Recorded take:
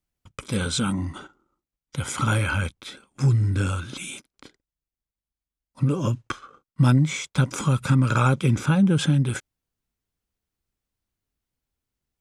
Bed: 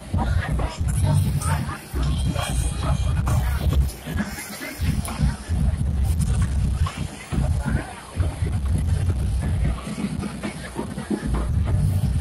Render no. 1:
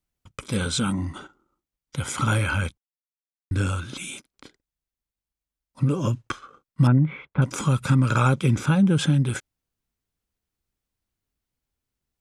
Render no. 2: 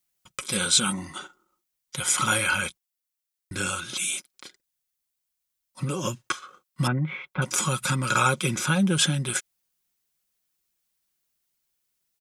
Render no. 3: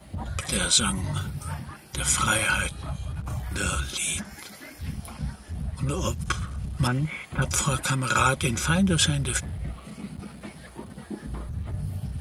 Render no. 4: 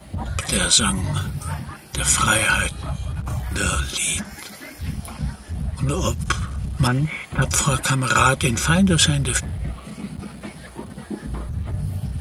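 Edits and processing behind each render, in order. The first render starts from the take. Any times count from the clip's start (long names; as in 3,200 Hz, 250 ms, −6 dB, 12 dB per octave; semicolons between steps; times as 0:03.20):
0:02.78–0:03.51: silence; 0:06.87–0:07.42: Bessel low-pass filter 1,500 Hz, order 6
spectral tilt +3 dB per octave; comb filter 5.5 ms, depth 48%
mix in bed −11 dB
level +5.5 dB; brickwall limiter −2 dBFS, peak gain reduction 1.5 dB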